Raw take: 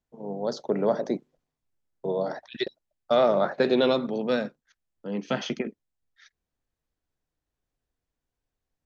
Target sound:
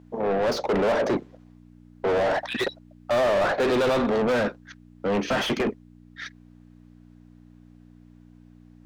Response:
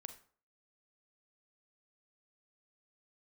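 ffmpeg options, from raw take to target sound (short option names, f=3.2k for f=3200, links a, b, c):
-filter_complex "[0:a]aeval=exprs='val(0)+0.00141*(sin(2*PI*60*n/s)+sin(2*PI*2*60*n/s)/2+sin(2*PI*3*60*n/s)/3+sin(2*PI*4*60*n/s)/4+sin(2*PI*5*60*n/s)/5)':c=same,asplit=2[a][b];[b]highpass=f=720:p=1,volume=35dB,asoftclip=type=tanh:threshold=-10dB[c];[a][c]amix=inputs=2:normalize=0,lowpass=f=1.8k:p=1,volume=-6dB,volume=-5dB"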